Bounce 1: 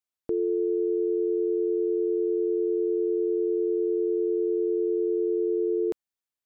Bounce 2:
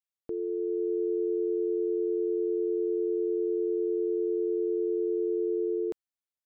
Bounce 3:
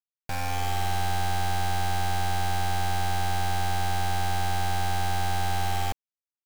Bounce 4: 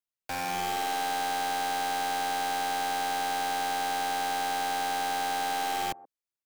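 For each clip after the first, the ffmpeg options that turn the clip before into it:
-af "dynaudnorm=f=120:g=11:m=4dB,volume=-7dB"
-af "aeval=exprs='abs(val(0))':c=same,acrusher=bits=5:mix=0:aa=0.000001,volume=4dB"
-filter_complex "[0:a]acrossover=split=250|1000[a][b][c];[a]aeval=exprs='0.0119*(abs(mod(val(0)/0.0119+3,4)-2)-1)':c=same[d];[b]aecho=1:1:128:0.178[e];[d][e][c]amix=inputs=3:normalize=0"

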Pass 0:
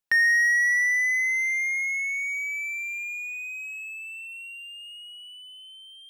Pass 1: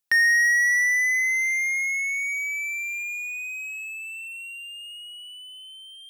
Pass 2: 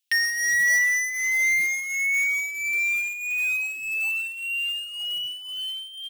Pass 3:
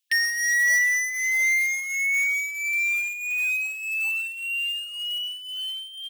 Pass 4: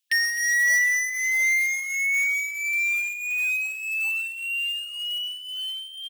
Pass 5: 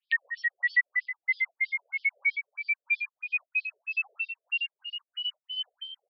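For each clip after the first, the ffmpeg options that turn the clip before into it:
-af "highshelf=f=4k:g=7.5"
-af "highpass=f=2.9k:t=q:w=2.7,aecho=1:1:7.2:0.53,acrusher=bits=4:mode=log:mix=0:aa=0.000001"
-af "afftfilt=real='re*gte(b*sr/1024,380*pow(1800/380,0.5+0.5*sin(2*PI*2.6*pts/sr)))':imag='im*gte(b*sr/1024,380*pow(1800/380,0.5+0.5*sin(2*PI*2.6*pts/sr)))':win_size=1024:overlap=0.75"
-af "aecho=1:1:258:0.0891"
-filter_complex "[0:a]asplit=2[a][b];[b]adelay=21,volume=-12dB[c];[a][c]amix=inputs=2:normalize=0,aresample=11025,aresample=44100,afftfilt=real='re*between(b*sr/1024,470*pow(4300/470,0.5+0.5*sin(2*PI*3.1*pts/sr))/1.41,470*pow(4300/470,0.5+0.5*sin(2*PI*3.1*pts/sr))*1.41)':imag='im*between(b*sr/1024,470*pow(4300/470,0.5+0.5*sin(2*PI*3.1*pts/sr))/1.41,470*pow(4300/470,0.5+0.5*sin(2*PI*3.1*pts/sr))*1.41)':win_size=1024:overlap=0.75"

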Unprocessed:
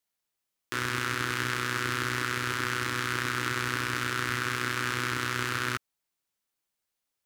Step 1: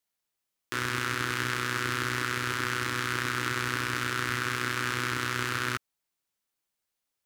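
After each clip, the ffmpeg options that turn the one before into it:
-af anull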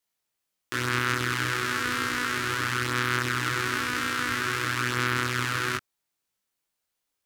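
-af "flanger=delay=20:depth=4.4:speed=0.49,volume=5.5dB"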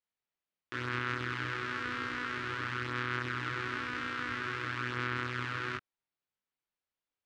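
-af "lowpass=3.3k,volume=-8dB"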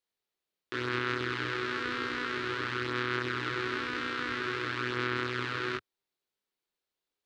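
-af "equalizer=f=100:t=o:w=0.67:g=-4,equalizer=f=400:t=o:w=0.67:g=8,equalizer=f=4k:t=o:w=0.67:g=6,volume=1.5dB"

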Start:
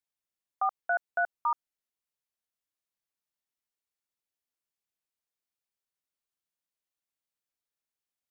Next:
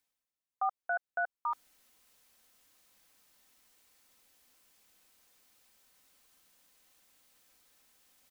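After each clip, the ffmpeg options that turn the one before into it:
-af "aecho=1:1:3.9:0.37,areverse,acompressor=mode=upward:threshold=-40dB:ratio=2.5,areverse,volume=-4.5dB"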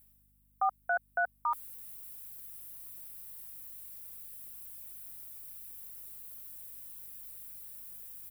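-af "aeval=exprs='val(0)+0.000282*(sin(2*PI*50*n/s)+sin(2*PI*2*50*n/s)/2+sin(2*PI*3*50*n/s)/3+sin(2*PI*4*50*n/s)/4+sin(2*PI*5*50*n/s)/5)':c=same,aexciter=amount=8.1:drive=4.3:freq=8.7k,volume=2.5dB"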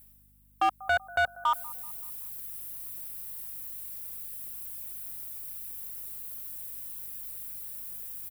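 -filter_complex "[0:a]asplit=2[a][b];[b]adelay=191,lowpass=f=1.6k:p=1,volume=-21dB,asplit=2[c][d];[d]adelay=191,lowpass=f=1.6k:p=1,volume=0.52,asplit=2[e][f];[f]adelay=191,lowpass=f=1.6k:p=1,volume=0.52,asplit=2[g][h];[h]adelay=191,lowpass=f=1.6k:p=1,volume=0.52[i];[a][c][e][g][i]amix=inputs=5:normalize=0,volume=27dB,asoftclip=hard,volume=-27dB,volume=7dB"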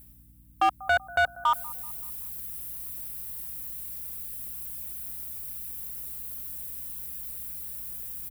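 -af "aeval=exprs='val(0)+0.00126*(sin(2*PI*60*n/s)+sin(2*PI*2*60*n/s)/2+sin(2*PI*3*60*n/s)/3+sin(2*PI*4*60*n/s)/4+sin(2*PI*5*60*n/s)/5)':c=same,volume=2.5dB"

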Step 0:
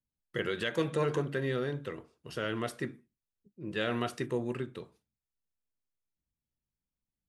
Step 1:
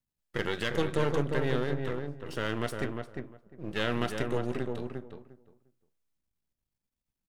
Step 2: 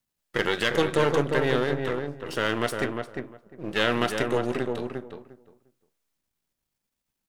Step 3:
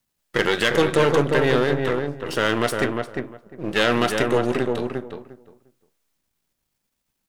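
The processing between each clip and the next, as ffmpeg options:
-filter_complex "[0:a]aeval=exprs='if(lt(val(0),0),0.251*val(0),val(0))':c=same,asplit=2[a][b];[b]adelay=352,lowpass=f=1.4k:p=1,volume=-4dB,asplit=2[c][d];[d]adelay=352,lowpass=f=1.4k:p=1,volume=0.18,asplit=2[e][f];[f]adelay=352,lowpass=f=1.4k:p=1,volume=0.18[g];[a][c][e][g]amix=inputs=4:normalize=0,volume=4dB"
-af "lowshelf=f=180:g=-10.5,volume=8dB"
-af "asoftclip=type=tanh:threshold=-12.5dB,volume=6dB"

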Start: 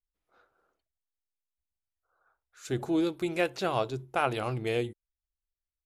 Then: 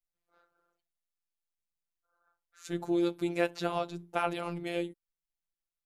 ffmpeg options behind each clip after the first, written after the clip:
-af "afftfilt=real='hypot(re,im)*cos(PI*b)':imag='0':win_size=1024:overlap=0.75"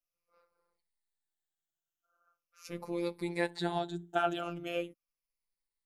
-af "afftfilt=real='re*pow(10,14/40*sin(2*PI*(0.9*log(max(b,1)*sr/1024/100)/log(2)-(-0.41)*(pts-256)/sr)))':imag='im*pow(10,14/40*sin(2*PI*(0.9*log(max(b,1)*sr/1024/100)/log(2)-(-0.41)*(pts-256)/sr)))':win_size=1024:overlap=0.75,volume=-3.5dB"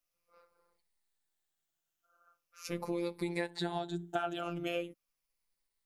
-af "acompressor=threshold=-37dB:ratio=6,volume=5.5dB"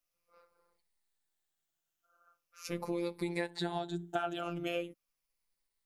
-af anull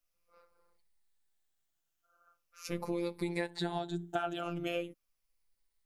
-af "lowshelf=f=67:g=10"

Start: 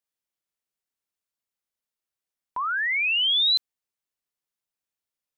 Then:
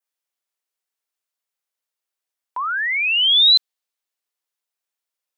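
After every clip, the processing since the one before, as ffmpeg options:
-af "highpass=430,adynamicequalizer=threshold=0.0251:dfrequency=3900:dqfactor=2:tfrequency=3900:tqfactor=2:attack=5:release=100:ratio=0.375:range=2.5:mode=boostabove:tftype=bell,volume=3.5dB"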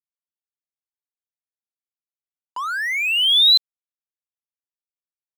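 -af "areverse,acompressor=mode=upward:threshold=-24dB:ratio=2.5,areverse,aeval=exprs='sgn(val(0))*max(abs(val(0))-0.0188,0)':c=same"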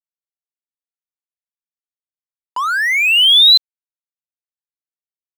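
-filter_complex "[0:a]asplit=2[a][b];[b]alimiter=limit=-15dB:level=0:latency=1,volume=1dB[c];[a][c]amix=inputs=2:normalize=0,acrusher=bits=8:mix=0:aa=0.000001,volume=1dB"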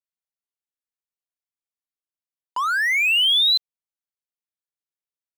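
-af "acompressor=threshold=-12dB:ratio=6,volume=-4dB"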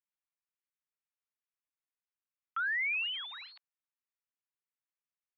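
-af "aresample=16000,asoftclip=type=tanh:threshold=-29dB,aresample=44100,highpass=f=580:t=q:w=0.5412,highpass=f=580:t=q:w=1.307,lowpass=f=2.5k:t=q:w=0.5176,lowpass=f=2.5k:t=q:w=0.7071,lowpass=f=2.5k:t=q:w=1.932,afreqshift=340,volume=-1.5dB"

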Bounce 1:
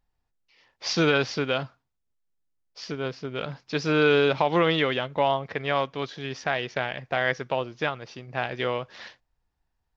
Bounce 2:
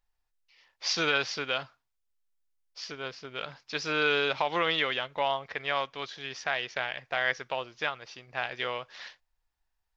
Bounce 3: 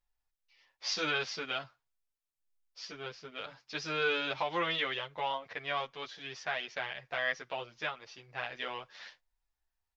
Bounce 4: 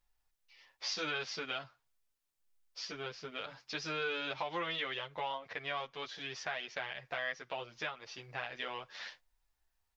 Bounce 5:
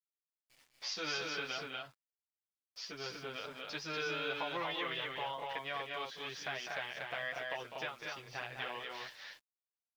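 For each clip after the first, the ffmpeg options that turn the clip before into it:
-af "equalizer=f=170:w=0.33:g=-14.5"
-filter_complex "[0:a]asplit=2[a][b];[b]adelay=9,afreqshift=1.5[c];[a][c]amix=inputs=2:normalize=1,volume=-2dB"
-af "acompressor=threshold=-47dB:ratio=2,volume=5dB"
-af "aeval=exprs='val(0)*gte(abs(val(0)),0.00126)':c=same,aecho=1:1:201.2|239.1:0.398|0.708,volume=-2.5dB"

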